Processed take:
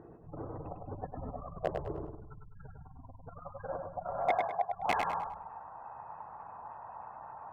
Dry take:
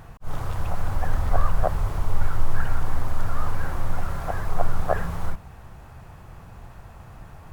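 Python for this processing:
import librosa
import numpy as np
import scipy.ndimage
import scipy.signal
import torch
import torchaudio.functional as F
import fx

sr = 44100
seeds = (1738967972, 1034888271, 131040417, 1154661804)

p1 = fx.notch(x, sr, hz=370.0, q=12.0)
p2 = fx.spec_gate(p1, sr, threshold_db=-30, keep='strong')
p3 = fx.over_compress(p2, sr, threshold_db=-20.0, ratio=-0.5)
p4 = p2 + F.gain(torch.from_numpy(p3), 2.0).numpy()
p5 = fx.filter_sweep_bandpass(p4, sr, from_hz=370.0, to_hz=900.0, start_s=2.58, end_s=4.96, q=4.8)
p6 = 10.0 ** (-20.0 / 20.0) * (np.abs((p5 / 10.0 ** (-20.0 / 20.0) + 3.0) % 4.0 - 2.0) - 1.0)
p7 = fx.bandpass_edges(p6, sr, low_hz=130.0, high_hz=2200.0, at=(4.28, 4.72), fade=0.02)
y = p7 + fx.echo_feedback(p7, sr, ms=102, feedback_pct=35, wet_db=-5.0, dry=0)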